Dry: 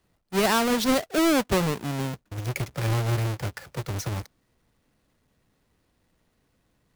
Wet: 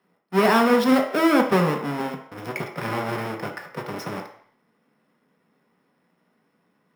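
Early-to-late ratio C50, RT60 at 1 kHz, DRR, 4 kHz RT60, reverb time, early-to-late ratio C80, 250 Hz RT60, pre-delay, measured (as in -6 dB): 8.0 dB, 0.65 s, 3.0 dB, 0.60 s, 0.60 s, 11.5 dB, 0.40 s, 3 ms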